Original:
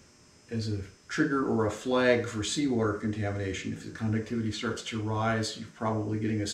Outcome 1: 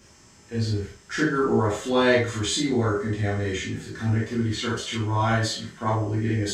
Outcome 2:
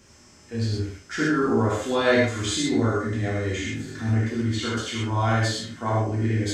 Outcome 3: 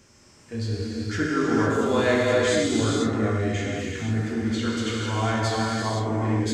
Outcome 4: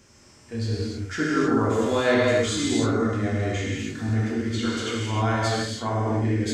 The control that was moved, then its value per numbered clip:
non-linear reverb, gate: 80, 150, 530, 330 ms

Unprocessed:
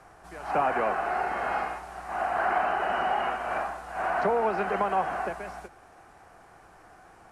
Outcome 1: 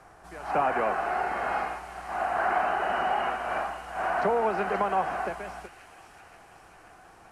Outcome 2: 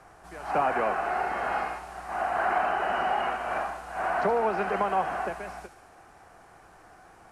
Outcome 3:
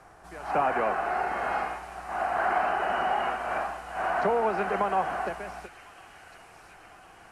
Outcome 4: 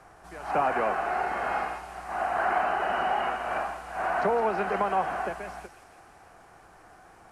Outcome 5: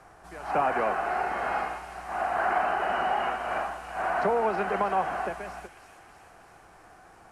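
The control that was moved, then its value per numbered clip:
thin delay, time: 531, 73, 1054, 165, 321 ms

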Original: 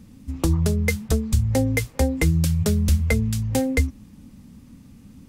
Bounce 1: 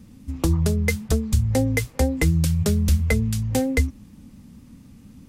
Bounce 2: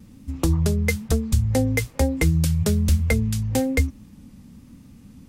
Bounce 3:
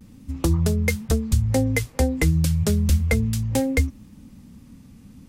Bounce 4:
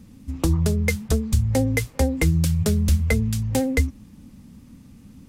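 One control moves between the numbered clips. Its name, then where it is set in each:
vibrato, rate: 4.4, 1.1, 0.34, 15 Hz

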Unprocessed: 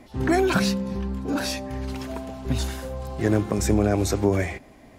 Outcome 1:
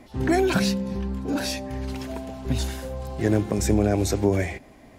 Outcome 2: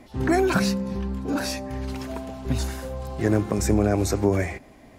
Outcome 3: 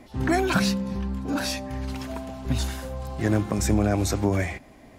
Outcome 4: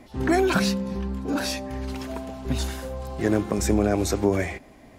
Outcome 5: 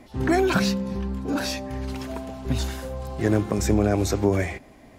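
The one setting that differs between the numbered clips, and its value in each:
dynamic EQ, frequency: 1200, 3300, 420, 110, 9600 Hz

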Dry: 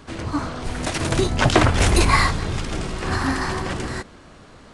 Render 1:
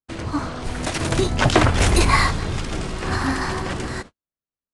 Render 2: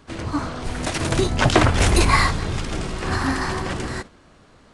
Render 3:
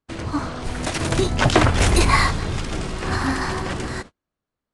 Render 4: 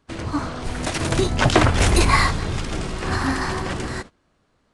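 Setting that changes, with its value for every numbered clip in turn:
gate, range: -55, -6, -40, -20 dB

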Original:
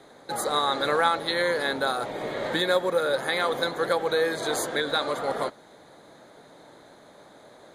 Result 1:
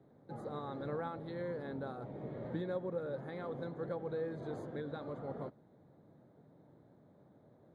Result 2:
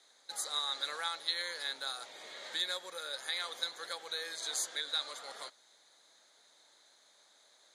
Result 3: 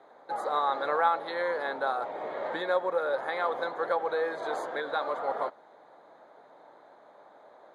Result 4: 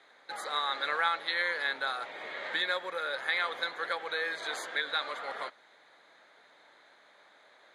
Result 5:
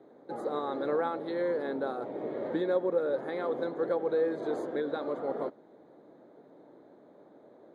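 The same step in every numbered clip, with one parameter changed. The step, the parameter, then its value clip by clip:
band-pass, frequency: 120, 5900, 850, 2200, 330 Hz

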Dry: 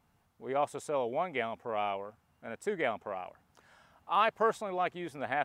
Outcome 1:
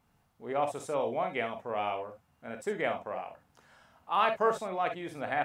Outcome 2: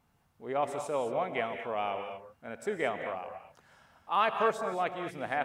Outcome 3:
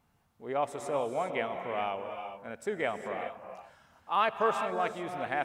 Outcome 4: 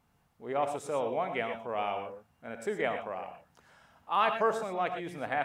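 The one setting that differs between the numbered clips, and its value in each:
non-linear reverb, gate: 80, 250, 440, 140 ms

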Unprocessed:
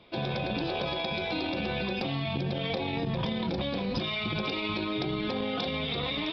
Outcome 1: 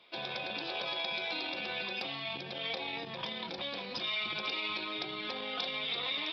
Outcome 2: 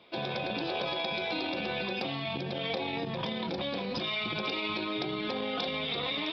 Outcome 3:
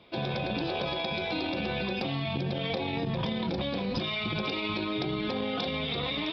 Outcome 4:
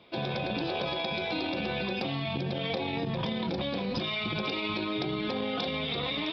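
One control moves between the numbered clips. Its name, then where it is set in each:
HPF, cutoff: 1400, 320, 42, 110 Hz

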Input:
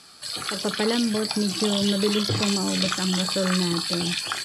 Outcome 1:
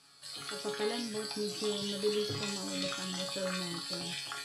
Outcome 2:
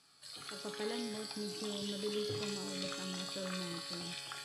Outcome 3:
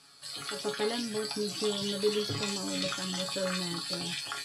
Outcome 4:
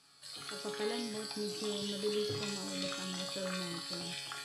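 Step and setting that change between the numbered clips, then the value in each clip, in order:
resonator, decay: 0.47, 2.2, 0.2, 1 s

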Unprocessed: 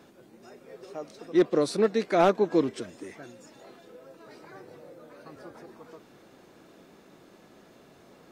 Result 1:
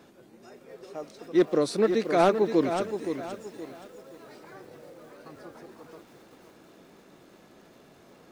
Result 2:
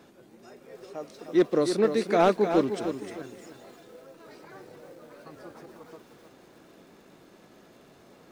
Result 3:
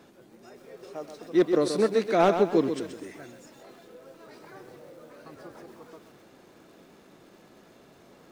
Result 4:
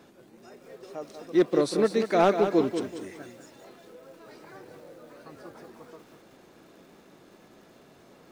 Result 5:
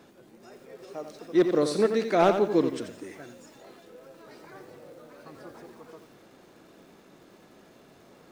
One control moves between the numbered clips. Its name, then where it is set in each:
lo-fi delay, time: 522, 305, 130, 190, 87 ms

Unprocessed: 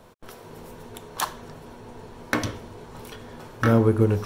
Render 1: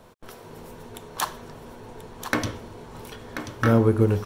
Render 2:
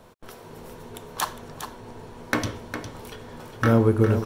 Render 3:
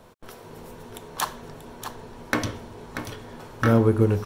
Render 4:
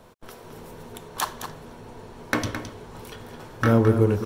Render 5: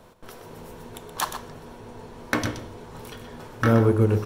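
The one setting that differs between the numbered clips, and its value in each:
echo, time: 1.035, 0.407, 0.636, 0.215, 0.124 s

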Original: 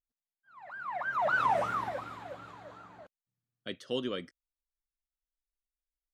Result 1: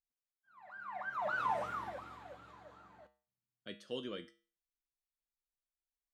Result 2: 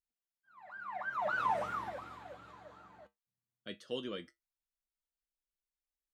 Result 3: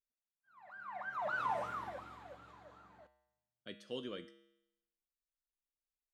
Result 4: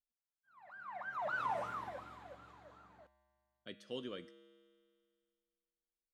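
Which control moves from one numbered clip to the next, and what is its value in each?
resonator, decay: 0.38, 0.16, 0.85, 2.1 s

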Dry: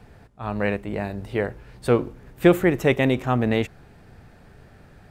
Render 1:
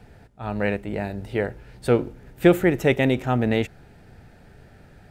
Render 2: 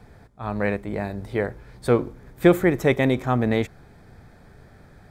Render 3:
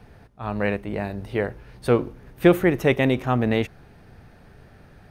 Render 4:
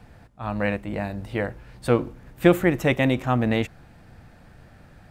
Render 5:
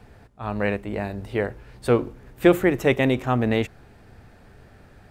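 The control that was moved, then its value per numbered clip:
notch, frequency: 1100, 2800, 7500, 410, 160 Hz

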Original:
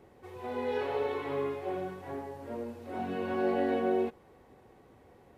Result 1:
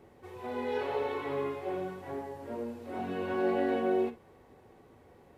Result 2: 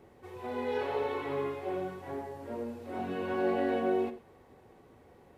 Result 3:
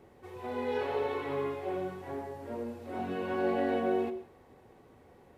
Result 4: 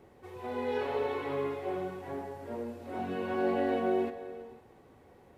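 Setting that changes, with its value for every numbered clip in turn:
non-linear reverb, gate: 80, 130, 200, 540 ms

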